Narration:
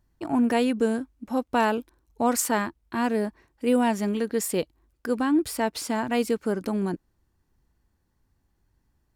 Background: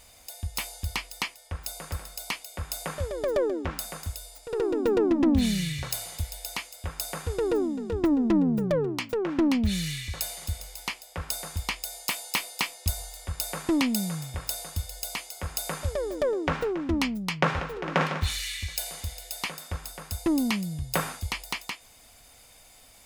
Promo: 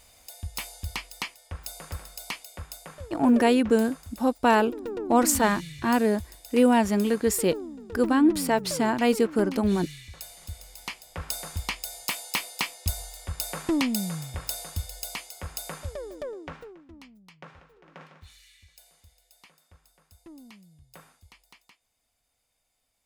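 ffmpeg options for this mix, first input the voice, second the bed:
-filter_complex "[0:a]adelay=2900,volume=2.5dB[a];[1:a]volume=7dB,afade=t=out:st=2.47:d=0.34:silence=0.421697,afade=t=in:st=10.31:d=1:silence=0.334965,afade=t=out:st=14.86:d=1.99:silence=0.0749894[b];[a][b]amix=inputs=2:normalize=0"

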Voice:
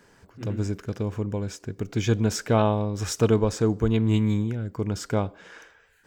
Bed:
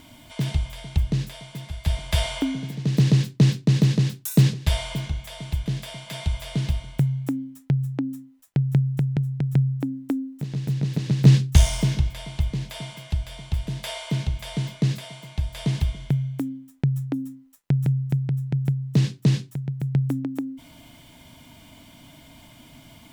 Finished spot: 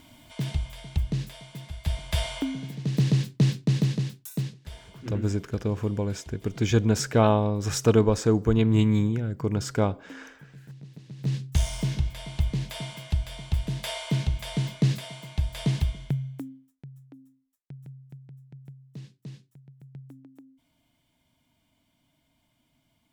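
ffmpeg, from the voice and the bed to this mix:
-filter_complex "[0:a]adelay=4650,volume=1dB[a];[1:a]volume=15dB,afade=t=out:st=3.72:d=0.89:silence=0.16788,afade=t=in:st=11.13:d=1.45:silence=0.105925,afade=t=out:st=15.61:d=1.16:silence=0.0794328[b];[a][b]amix=inputs=2:normalize=0"

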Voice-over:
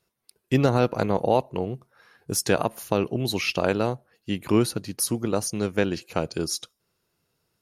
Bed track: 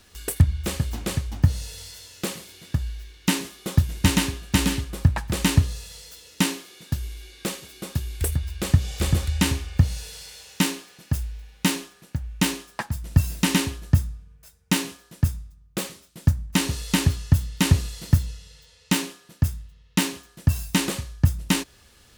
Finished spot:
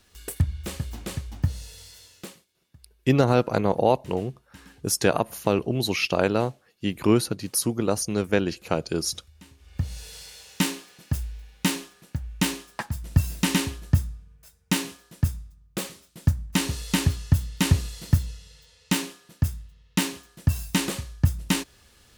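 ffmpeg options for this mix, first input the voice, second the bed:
-filter_complex "[0:a]adelay=2550,volume=1dB[a];[1:a]volume=21dB,afade=t=out:st=2.04:d=0.42:silence=0.0707946,afade=t=in:st=9.58:d=0.59:silence=0.0446684[b];[a][b]amix=inputs=2:normalize=0"

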